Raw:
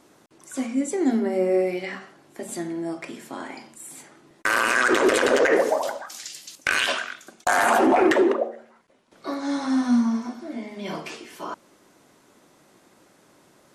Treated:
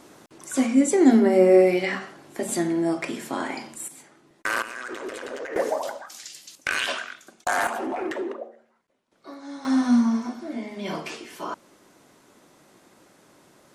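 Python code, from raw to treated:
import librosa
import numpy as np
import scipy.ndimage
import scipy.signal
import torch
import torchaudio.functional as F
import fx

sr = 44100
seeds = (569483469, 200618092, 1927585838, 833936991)

y = fx.gain(x, sr, db=fx.steps((0.0, 6.0), (3.88, -4.0), (4.62, -15.5), (5.56, -3.5), (7.67, -11.5), (9.65, 1.0)))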